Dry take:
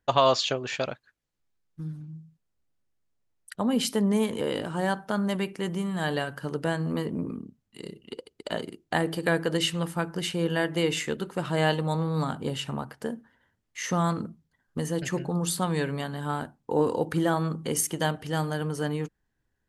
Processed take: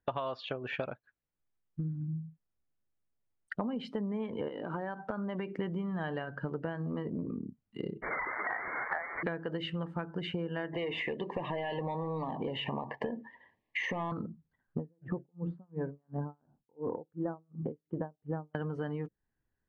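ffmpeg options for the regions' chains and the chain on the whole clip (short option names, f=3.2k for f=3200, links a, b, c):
-filter_complex "[0:a]asettb=1/sr,asplit=3[a][b][c];[a]atrim=end=4.484[d];[b]atrim=start=4.48:end=5.57,asetpts=PTS-STARTPTS,afade=t=in:d=0.004:c=qsin,afade=t=out:st=1.086:d=0.004:c=qsin,equalizer=f=99:t=o:w=1.1:g=-14,acompressor=threshold=-33dB:ratio=3:attack=3.2:release=140:knee=1:detection=peak[e];[c]atrim=start=5.566[f];[d][e]acrossfade=d=0.004:c1=hsin:c2=qsin[g];[g][f]acrossfade=d=0.004:c1=qsin:c2=hsin,asettb=1/sr,asplit=3[h][i][j];[h]atrim=end=8.024[k];[i]atrim=start=8.02:end=9.23,asetpts=PTS-STARTPTS,afade=t=in:d=0.004:c=qsin,afade=t=out:st=1.206:d=0.004:c=qsin,aeval=exprs='val(0)+0.5*0.075*sgn(val(0))':c=same,highpass=780,lowpass=f=2.1k:t=q:w=0.5098,lowpass=f=2.1k:t=q:w=0.6013,lowpass=f=2.1k:t=q:w=0.9,lowpass=f=2.1k:t=q:w=2.563,afreqshift=-2500[l];[j]atrim=start=9.226[m];[k][l]acrossfade=d=0.004:c1=hsin:c2=qsin[n];[n][m]acrossfade=d=0.004:c1=qsin:c2=hsin,asettb=1/sr,asplit=3[o][p][q];[o]atrim=end=10.734[r];[p]atrim=start=10.73:end=14.12,asetpts=PTS-STARTPTS,afade=t=in:d=0.004:c=qsin,afade=t=out:st=3.386:d=0.004:c=qsin,asplit=2[s][t];[t]highpass=f=720:p=1,volume=21dB,asoftclip=type=tanh:threshold=-9dB[u];[s][u]amix=inputs=2:normalize=0,lowpass=f=3.3k:p=1,volume=-6dB,acompressor=threshold=-29dB:ratio=2:attack=3.2:release=140:knee=1:detection=peak,asuperstop=centerf=1400:order=8:qfactor=2.6[v];[q]atrim=start=14.116[w];[r][v]acrossfade=d=0.004:c1=hsin:c2=qsin[x];[x][w]acrossfade=d=0.004:c1=qsin:c2=hsin,asettb=1/sr,asplit=3[y][z][aa];[y]atrim=end=14.784[ab];[z]atrim=start=14.78:end=18.55,asetpts=PTS-STARTPTS,afade=t=in:d=0.004:c=qsin,afade=t=out:st=3.766:d=0.004:c=qsin,lowpass=1k,aeval=exprs='val(0)*pow(10,-38*(0.5-0.5*cos(2*PI*2.8*n/s))/20)':c=same[ac];[aa]atrim=start=18.546[ad];[ab][ac]acrossfade=d=0.004:c1=hsin:c2=qsin[ae];[ae][ad]acrossfade=d=0.004:c1=qsin:c2=hsin,lowpass=2.4k,afftdn=nr=13:nf=-44,acompressor=threshold=-39dB:ratio=16,volume=7dB"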